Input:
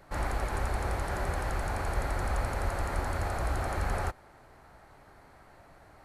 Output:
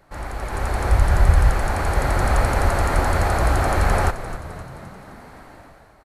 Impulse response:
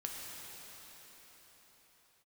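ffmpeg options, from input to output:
-filter_complex "[0:a]asplit=3[a][b][c];[a]afade=t=out:st=0.9:d=0.02[d];[b]asubboost=boost=7.5:cutoff=150,afade=t=in:st=0.9:d=0.02,afade=t=out:st=1.49:d=0.02[e];[c]afade=t=in:st=1.49:d=0.02[f];[d][e][f]amix=inputs=3:normalize=0,dynaudnorm=f=170:g=7:m=12.5dB,asplit=7[g][h][i][j][k][l][m];[h]adelay=261,afreqshift=-57,volume=-13dB[n];[i]adelay=522,afreqshift=-114,volume=-17.9dB[o];[j]adelay=783,afreqshift=-171,volume=-22.8dB[p];[k]adelay=1044,afreqshift=-228,volume=-27.6dB[q];[l]adelay=1305,afreqshift=-285,volume=-32.5dB[r];[m]adelay=1566,afreqshift=-342,volume=-37.4dB[s];[g][n][o][p][q][r][s]amix=inputs=7:normalize=0"

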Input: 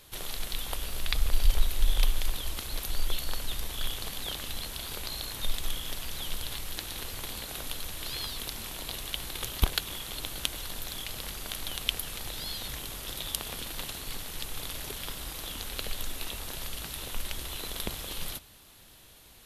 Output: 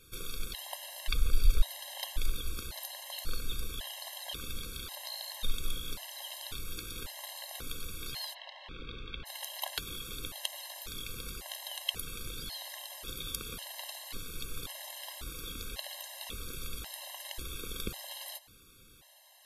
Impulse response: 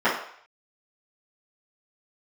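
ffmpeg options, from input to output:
-filter_complex "[0:a]asplit=3[a][b][c];[a]afade=t=out:st=8.33:d=0.02[d];[b]lowpass=f=3.4k:w=0.5412,lowpass=f=3.4k:w=1.3066,afade=t=in:st=8.33:d=0.02,afade=t=out:st=9.25:d=0.02[e];[c]afade=t=in:st=9.25:d=0.02[f];[d][e][f]amix=inputs=3:normalize=0,afftfilt=real='re*gt(sin(2*PI*0.92*pts/sr)*(1-2*mod(floor(b*sr/1024/540),2)),0)':imag='im*gt(sin(2*PI*0.92*pts/sr)*(1-2*mod(floor(b*sr/1024/540),2)),0)':win_size=1024:overlap=0.75,volume=-1.5dB"

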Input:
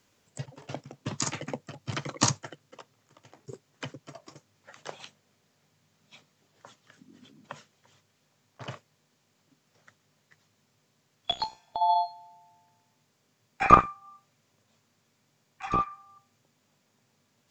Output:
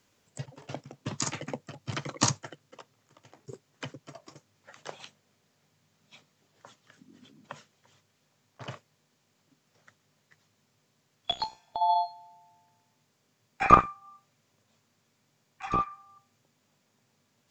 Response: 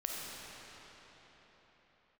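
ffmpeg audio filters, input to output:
-af "volume=-1dB"

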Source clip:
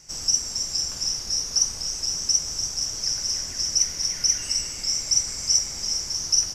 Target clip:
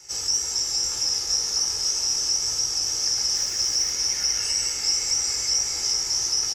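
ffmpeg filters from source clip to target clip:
-filter_complex "[0:a]highpass=46,lowshelf=f=280:g=-9,aecho=1:1:2.3:0.59,acrossover=split=220|2200[a][b][c];[c]alimiter=limit=-17.5dB:level=0:latency=1:release=70[d];[a][b][d]amix=inputs=3:normalize=0,flanger=delay=16:depth=4:speed=1.9,asettb=1/sr,asplit=3[e][f][g];[e]atrim=end=3.354[h];[f]atrim=start=3.35:end=3.92,asetpts=PTS-STARTPTS,afade=t=in:d=0.004:c=qsin,afade=t=out:st=0.566:d=0.004:c=qsin,acrusher=bits=7:mix=0:aa=0.5[i];[g]atrim=start=3.916[j];[h][i]acrossfade=d=0.004:c1=hsin:c2=qsin[k];[k][j]acrossfade=d=0.004:c1=qsin:c2=hsin,asplit=2[l][m];[m]asplit=8[n][o][p][q][r][s][t][u];[n]adelay=413,afreqshift=-77,volume=-9dB[v];[o]adelay=826,afreqshift=-154,volume=-13.2dB[w];[p]adelay=1239,afreqshift=-231,volume=-17.3dB[x];[q]adelay=1652,afreqshift=-308,volume=-21.5dB[y];[r]adelay=2065,afreqshift=-385,volume=-25.6dB[z];[s]adelay=2478,afreqshift=-462,volume=-29.8dB[aa];[t]adelay=2891,afreqshift=-539,volume=-33.9dB[ab];[u]adelay=3304,afreqshift=-616,volume=-38.1dB[ac];[v][w][x][y][z][aa][ab][ac]amix=inputs=8:normalize=0[ad];[l][ad]amix=inputs=2:normalize=0,volume=6dB"

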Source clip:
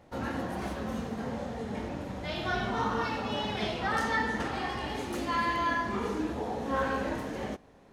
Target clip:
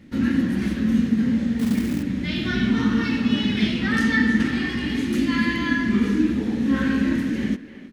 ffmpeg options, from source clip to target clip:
-filter_complex "[0:a]firequalizer=gain_entry='entry(110,0);entry(240,12);entry(410,-6);entry(720,-19);entry(1800,2);entry(6900,-3)':delay=0.05:min_phase=1,asplit=2[a][b];[b]adelay=320,highpass=300,lowpass=3.4k,asoftclip=type=hard:threshold=-24.5dB,volume=-12dB[c];[a][c]amix=inputs=2:normalize=0,asettb=1/sr,asplit=3[d][e][f];[d]atrim=end=1.594[g];[e]atrim=start=1.59:end=2.03,asetpts=PTS-STARTPTS,afade=t=in:d=0.004:c=qsin,afade=t=out:st=0.436:d=0.004:c=qsin,acrusher=bits=4:mode=log:mix=0:aa=0.000001[h];[f]atrim=start=2.026[i];[g][h]acrossfade=d=0.004:c1=hsin:c2=qsin[j];[j][i]acrossfade=d=0.004:c1=qsin:c2=hsin,volume=7.5dB"

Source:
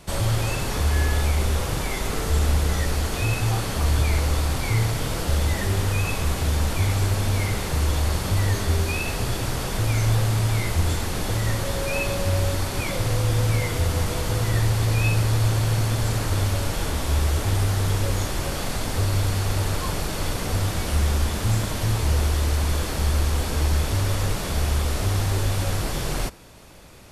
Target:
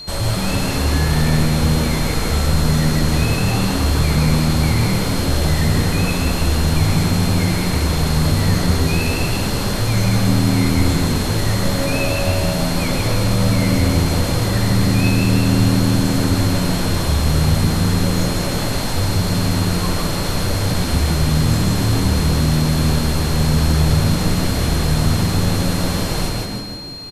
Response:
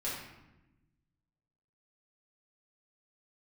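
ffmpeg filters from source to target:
-filter_complex "[0:a]asplit=7[a][b][c][d][e][f][g];[b]adelay=158,afreqshift=80,volume=-4dB[h];[c]adelay=316,afreqshift=160,volume=-10.4dB[i];[d]adelay=474,afreqshift=240,volume=-16.8dB[j];[e]adelay=632,afreqshift=320,volume=-23.1dB[k];[f]adelay=790,afreqshift=400,volume=-29.5dB[l];[g]adelay=948,afreqshift=480,volume=-35.9dB[m];[a][h][i][j][k][l][m]amix=inputs=7:normalize=0,acontrast=40,asplit=2[n][o];[1:a]atrim=start_sample=2205,adelay=133[p];[o][p]afir=irnorm=-1:irlink=0,volume=-9dB[q];[n][q]amix=inputs=2:normalize=0,aeval=exprs='val(0)+0.0398*sin(2*PI*4200*n/s)':c=same,volume=-3dB"

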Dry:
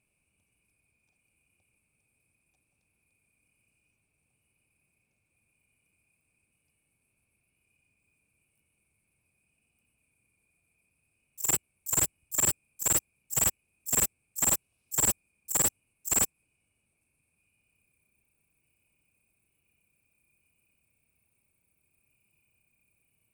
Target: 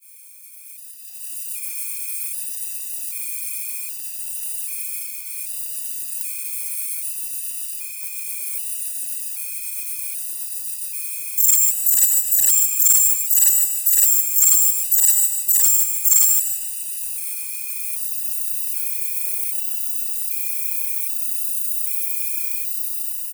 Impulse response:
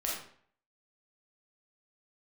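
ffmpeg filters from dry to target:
-filter_complex "[0:a]aeval=exprs='val(0)+0.5*0.00944*sgn(val(0))':c=same,highpass=60,aderivative,aecho=1:1:150|300|450:0.299|0.0716|0.0172,dynaudnorm=f=300:g=7:m=5.5dB,agate=range=-33dB:threshold=-35dB:ratio=3:detection=peak,highshelf=f=8k:g=8.5,asplit=2[a][b];[1:a]atrim=start_sample=2205,adelay=84[c];[b][c]afir=irnorm=-1:irlink=0,volume=-11.5dB[d];[a][d]amix=inputs=2:normalize=0,apsyclip=14.5dB,acompressor=threshold=-16dB:ratio=2,afftfilt=real='re*gt(sin(2*PI*0.64*pts/sr)*(1-2*mod(floor(b*sr/1024/510),2)),0)':imag='im*gt(sin(2*PI*0.64*pts/sr)*(1-2*mod(floor(b*sr/1024/510),2)),0)':win_size=1024:overlap=0.75"

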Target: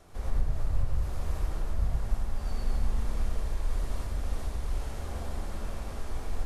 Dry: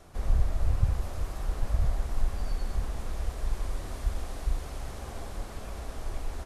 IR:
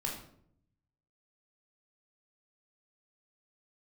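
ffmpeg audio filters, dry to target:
-filter_complex "[0:a]alimiter=limit=-20dB:level=0:latency=1:release=229,asplit=2[a][b];[1:a]atrim=start_sample=2205,adelay=82[c];[b][c]afir=irnorm=-1:irlink=0,volume=-2.5dB[d];[a][d]amix=inputs=2:normalize=0,volume=-3dB"

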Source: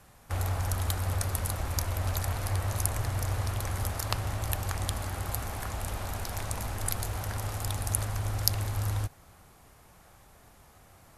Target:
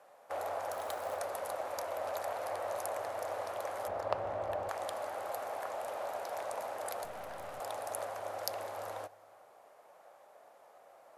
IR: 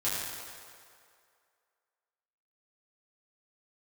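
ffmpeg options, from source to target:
-filter_complex "[0:a]highpass=f=580:t=q:w=3.4,highshelf=f=2.5k:g=-11,asettb=1/sr,asplit=3[a][b][c];[a]atrim=end=0.724[d];[b]atrim=start=0.72:end=1.17,asetpts=PTS-STARTPTS,afade=t=in:d=0.004:c=qsin,afade=t=out:st=0.446:d=0.004:c=qsin,acrusher=bits=5:mode=log:mix=0:aa=0.000001[e];[c]atrim=start=1.166[f];[d][e]acrossfade=d=0.004:c1=hsin:c2=qsin[g];[g][f]acrossfade=d=0.004:c1=qsin:c2=hsin,asettb=1/sr,asplit=3[h][i][j];[h]atrim=end=3.884[k];[i]atrim=start=3.88:end=4.69,asetpts=PTS-STARTPTS,afade=t=in:d=0.004:c=qsin,afade=t=out:st=0.806:d=0.004:c=qsin,aemphasis=mode=reproduction:type=riaa[l];[j]atrim=start=4.686[m];[k][l]acrossfade=d=0.004:c1=hsin:c2=qsin[n];[n][m]acrossfade=d=0.004:c1=qsin:c2=hsin,asettb=1/sr,asplit=3[o][p][q];[o]atrim=end=7.044[r];[p]atrim=start=7.04:end=7.6,asetpts=PTS-STARTPTS,afade=t=in:d=0.004:c=qsin,afade=t=out:st=0.556:d=0.004:c=qsin,aeval=exprs='(tanh(70.8*val(0)+0.65)-tanh(0.65))/70.8':c=same[s];[q]atrim=start=7.596[t];[r][s]acrossfade=d=0.004:c1=hsin:c2=qsin[u];[u][t]acrossfade=d=0.004:c1=qsin:c2=hsin,asplit=2[v][w];[1:a]atrim=start_sample=2205[x];[w][x]afir=irnorm=-1:irlink=0,volume=-30.5dB[y];[v][y]amix=inputs=2:normalize=0,volume=-3dB"

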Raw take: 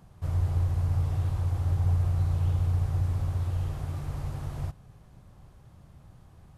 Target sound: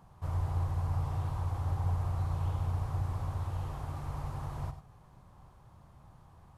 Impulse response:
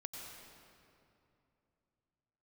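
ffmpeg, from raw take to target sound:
-filter_complex "[0:a]equalizer=f=970:t=o:w=0.95:g=10[a];[1:a]atrim=start_sample=2205,atrim=end_sample=4410[b];[a][b]afir=irnorm=-1:irlink=0"

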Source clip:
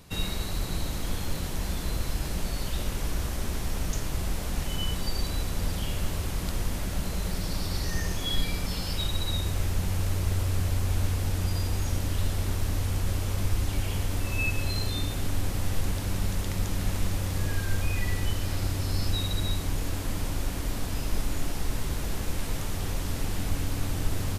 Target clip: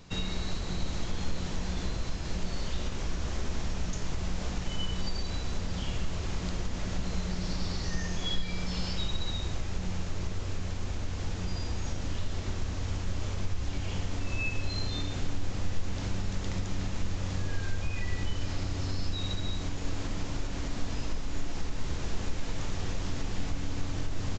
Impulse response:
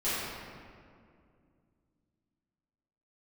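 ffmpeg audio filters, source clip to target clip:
-filter_complex "[0:a]acompressor=threshold=-27dB:ratio=6,asplit=2[a][b];[1:a]atrim=start_sample=2205,afade=t=out:st=0.17:d=0.01,atrim=end_sample=7938[c];[b][c]afir=irnorm=-1:irlink=0,volume=-14.5dB[d];[a][d]amix=inputs=2:normalize=0,aresample=16000,aresample=44100,volume=-1.5dB"

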